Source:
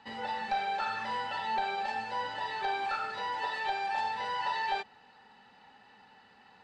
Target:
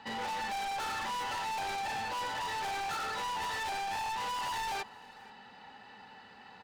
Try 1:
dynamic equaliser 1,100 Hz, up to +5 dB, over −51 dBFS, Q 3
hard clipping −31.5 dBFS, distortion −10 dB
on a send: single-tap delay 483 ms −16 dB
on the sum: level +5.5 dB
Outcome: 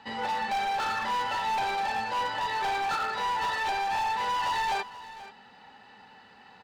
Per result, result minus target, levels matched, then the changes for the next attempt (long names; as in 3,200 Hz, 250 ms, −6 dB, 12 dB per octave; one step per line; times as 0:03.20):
echo-to-direct +8 dB; hard clipping: distortion −5 dB
change: single-tap delay 483 ms −24 dB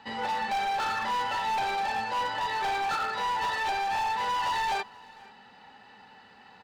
hard clipping: distortion −5 dB
change: hard clipping −40 dBFS, distortion −5 dB